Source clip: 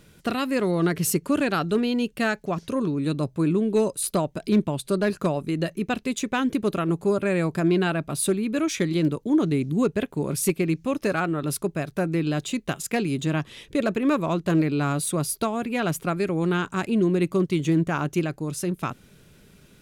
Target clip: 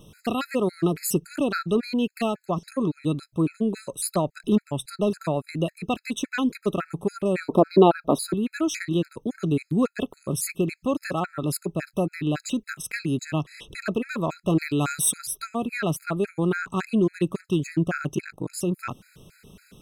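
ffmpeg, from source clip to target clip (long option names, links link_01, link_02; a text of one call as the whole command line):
ffmpeg -i in.wav -filter_complex "[0:a]asettb=1/sr,asplit=3[link_01][link_02][link_03];[link_01]atrim=end=14.584[link_04];[link_02]atrim=start=14.58:end=15.18,asetpts=PTS-STARTPTS,afade=type=in:duration=0.004:curve=qsin,afade=type=out:start_time=0.596:duration=0.004:curve=qsin,highshelf=frequency=3100:gain=11.5[link_05];[link_03]atrim=start=15.176[link_06];[link_04][link_05]acrossfade=duration=0.004:curve1=hsin:curve2=qsin[link_07];[link_07][link_06]acrossfade=duration=0.004:curve1=qsin:curve2=hsin,asettb=1/sr,asplit=3[link_08][link_09][link_10];[link_08]atrim=end=18.154[link_11];[link_09]atrim=start=18.15:end=18.55,asetpts=PTS-STARTPTS,afade=type=in:duration=0.004:curve=qsin,afade=type=out:start_time=0.396:duration=0.004:curve=qsin,aeval=exprs='val(0)*sin(2*PI*25*n/s)':channel_layout=same[link_12];[link_10]atrim=start=18.546[link_13];[link_11][link_12]acrossfade=duration=0.004:curve1=hsin:curve2=qsin[link_14];[link_14][link_13]acrossfade=duration=0.004:curve1=qsin:curve2=hsin,asplit=2[link_15][link_16];[link_16]acompressor=threshold=-35dB:ratio=5,volume=-3dB[link_17];[link_15][link_17]amix=inputs=2:normalize=0,asoftclip=type=hard:threshold=-12.5dB,asettb=1/sr,asplit=3[link_18][link_19][link_20];[link_18]atrim=end=7.404[link_21];[link_19]atrim=start=7.4:end=8.34,asetpts=PTS-STARTPTS,afade=type=in:duration=0.004:curve=qsin,afade=type=out:start_time=0.936:duration=0.004:curve=qsin,equalizer=frequency=125:width_type=o:width=1:gain=-8,equalizer=frequency=250:width_type=o:width=1:gain=10,equalizer=frequency=500:width_type=o:width=1:gain=11,equalizer=frequency=1000:width_type=o:width=1:gain=11,equalizer=frequency=2000:width_type=o:width=1:gain=-12,equalizer=frequency=4000:width_type=o:width=1:gain=7,equalizer=frequency=8000:width_type=o:width=1:gain=-9[link_22];[link_20]atrim=start=8.336[link_23];[link_21][link_22]acrossfade=duration=0.004:curve1=hsin:curve2=qsin[link_24];[link_24][link_23]acrossfade=duration=0.004:curve1=qsin:curve2=hsin,afftfilt=real='re*gt(sin(2*PI*3.6*pts/sr)*(1-2*mod(floor(b*sr/1024/1300),2)),0)':imag='im*gt(sin(2*PI*3.6*pts/sr)*(1-2*mod(floor(b*sr/1024/1300),2)),0)':win_size=1024:overlap=0.75" out.wav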